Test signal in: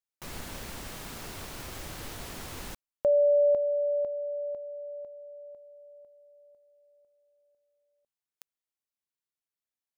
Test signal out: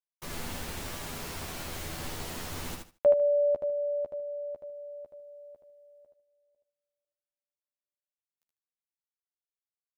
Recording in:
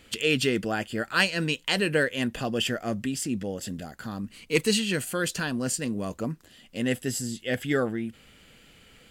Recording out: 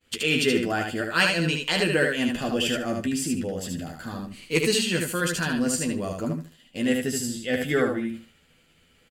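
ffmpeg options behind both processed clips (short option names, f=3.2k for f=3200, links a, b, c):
-filter_complex "[0:a]asplit=2[a][b];[b]adelay=12,volume=-5.5dB[c];[a][c]amix=inputs=2:normalize=0,agate=range=-33dB:threshold=-46dB:ratio=3:release=174:detection=peak,aecho=1:1:75|150|225:0.631|0.126|0.0252"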